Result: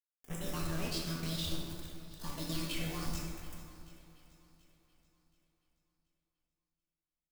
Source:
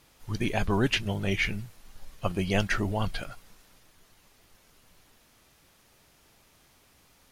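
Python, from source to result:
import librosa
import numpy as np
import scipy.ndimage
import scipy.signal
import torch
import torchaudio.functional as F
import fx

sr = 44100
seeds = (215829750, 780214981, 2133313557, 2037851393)

p1 = fx.pitch_heads(x, sr, semitones=8.5)
p2 = fx.peak_eq(p1, sr, hz=630.0, db=-12.5, octaves=2.5)
p3 = fx.level_steps(p2, sr, step_db=18)
p4 = fx.comb_fb(p3, sr, f0_hz=290.0, decay_s=0.31, harmonics='all', damping=0.0, mix_pct=70)
p5 = 10.0 ** (-37.0 / 20.0) * np.tanh(p4 / 10.0 ** (-37.0 / 20.0))
p6 = fx.quant_companded(p5, sr, bits=4)
p7 = fx.filter_lfo_notch(p6, sr, shape='sine', hz=0.66, low_hz=800.0, high_hz=4600.0, q=1.6)
p8 = p7 + fx.echo_swing(p7, sr, ms=729, ratio=1.5, feedback_pct=35, wet_db=-17, dry=0)
p9 = fx.rev_plate(p8, sr, seeds[0], rt60_s=2.2, hf_ratio=0.45, predelay_ms=0, drr_db=-2.5)
y = p9 * librosa.db_to_amplitude(5.5)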